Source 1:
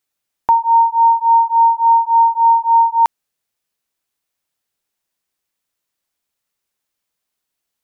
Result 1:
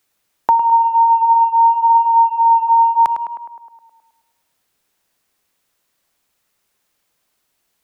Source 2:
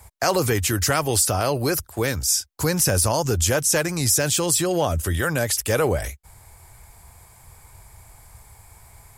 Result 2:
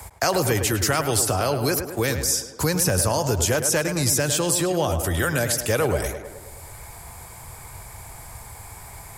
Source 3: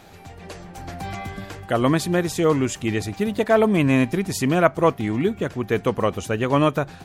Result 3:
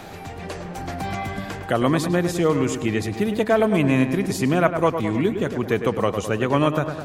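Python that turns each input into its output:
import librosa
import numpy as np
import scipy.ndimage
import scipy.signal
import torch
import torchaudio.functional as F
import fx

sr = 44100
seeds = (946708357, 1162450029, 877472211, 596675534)

y = fx.echo_tape(x, sr, ms=105, feedback_pct=57, wet_db=-7.5, lp_hz=2200.0, drive_db=0.0, wow_cents=14)
y = fx.band_squash(y, sr, depth_pct=40)
y = y * librosa.db_to_amplitude(-1.0)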